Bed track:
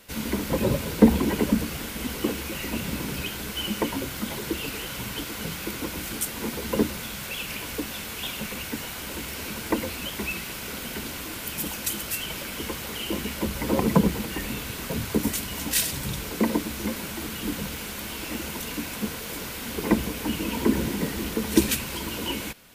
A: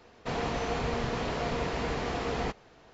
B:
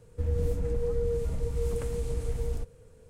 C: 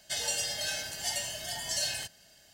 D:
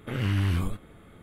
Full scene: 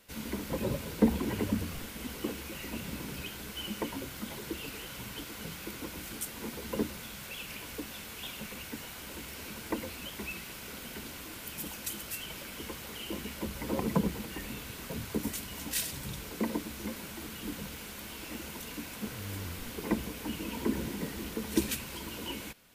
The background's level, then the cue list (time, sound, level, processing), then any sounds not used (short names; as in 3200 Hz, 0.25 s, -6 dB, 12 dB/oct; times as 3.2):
bed track -9 dB
1.11 add D -15 dB
18.95 add D -16 dB
not used: A, B, C